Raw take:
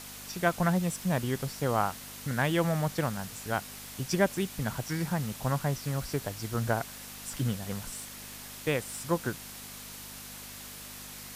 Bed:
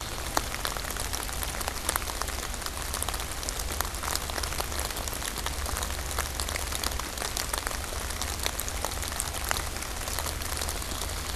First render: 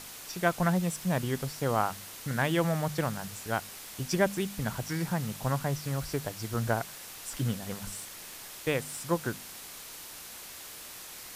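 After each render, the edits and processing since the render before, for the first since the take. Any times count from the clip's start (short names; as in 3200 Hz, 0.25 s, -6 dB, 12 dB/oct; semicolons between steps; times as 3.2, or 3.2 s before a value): de-hum 50 Hz, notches 5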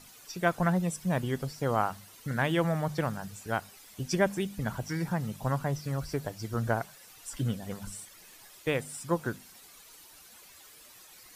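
denoiser 12 dB, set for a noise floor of -45 dBFS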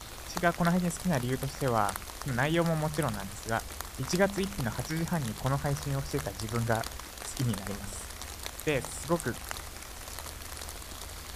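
add bed -9.5 dB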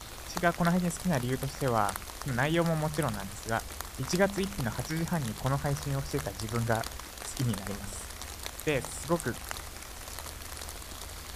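nothing audible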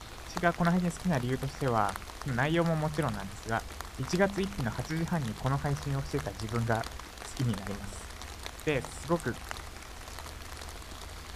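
high shelf 7300 Hz -11.5 dB; notch 560 Hz, Q 15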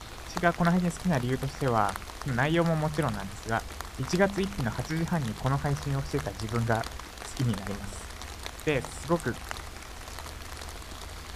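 gain +2.5 dB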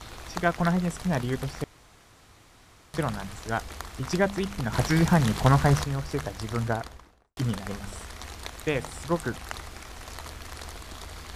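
1.64–2.94 room tone; 4.73–5.84 gain +8 dB; 6.55–7.37 studio fade out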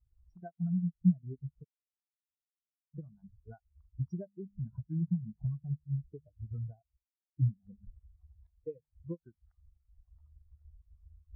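compressor 16:1, threshold -33 dBFS, peak gain reduction 20 dB; spectral expander 4:1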